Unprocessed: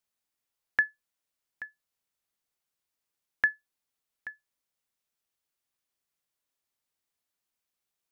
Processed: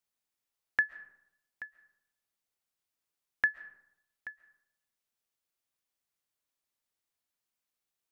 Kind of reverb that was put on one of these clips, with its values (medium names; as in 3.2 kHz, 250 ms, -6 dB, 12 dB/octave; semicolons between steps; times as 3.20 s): algorithmic reverb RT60 0.8 s, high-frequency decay 0.5×, pre-delay 95 ms, DRR 16.5 dB; trim -2.5 dB